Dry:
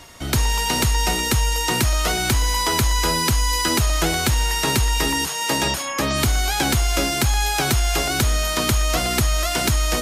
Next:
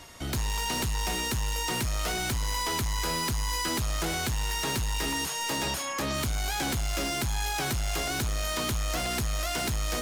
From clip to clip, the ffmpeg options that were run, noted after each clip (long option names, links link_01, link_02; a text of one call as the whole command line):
ffmpeg -i in.wav -af "asoftclip=type=tanh:threshold=-21.5dB,volume=-4.5dB" out.wav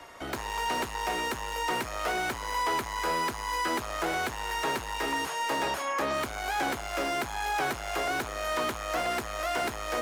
ffmpeg -i in.wav -filter_complex "[0:a]acrossover=split=340 2200:gain=0.2 1 0.224[link_01][link_02][link_03];[link_01][link_02][link_03]amix=inputs=3:normalize=0,acrossover=split=210|1800[link_04][link_05][link_06];[link_04]alimiter=level_in=22.5dB:limit=-24dB:level=0:latency=1,volume=-22.5dB[link_07];[link_07][link_05][link_06]amix=inputs=3:normalize=0,volume=5dB" out.wav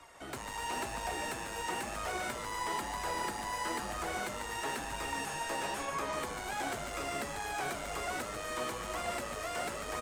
ffmpeg -i in.wav -filter_complex "[0:a]flanger=delay=0.8:depth=8.4:regen=48:speed=1:shape=sinusoidal,equalizer=frequency=8300:width=2.7:gain=9,asplit=2[link_01][link_02];[link_02]asplit=7[link_03][link_04][link_05][link_06][link_07][link_08][link_09];[link_03]adelay=144,afreqshift=-130,volume=-6dB[link_10];[link_04]adelay=288,afreqshift=-260,volume=-10.9dB[link_11];[link_05]adelay=432,afreqshift=-390,volume=-15.8dB[link_12];[link_06]adelay=576,afreqshift=-520,volume=-20.6dB[link_13];[link_07]adelay=720,afreqshift=-650,volume=-25.5dB[link_14];[link_08]adelay=864,afreqshift=-780,volume=-30.4dB[link_15];[link_09]adelay=1008,afreqshift=-910,volume=-35.3dB[link_16];[link_10][link_11][link_12][link_13][link_14][link_15][link_16]amix=inputs=7:normalize=0[link_17];[link_01][link_17]amix=inputs=2:normalize=0,volume=-4dB" out.wav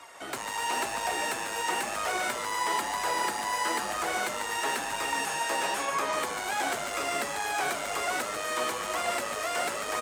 ffmpeg -i in.wav -af "highpass=frequency=450:poles=1,volume=8dB" out.wav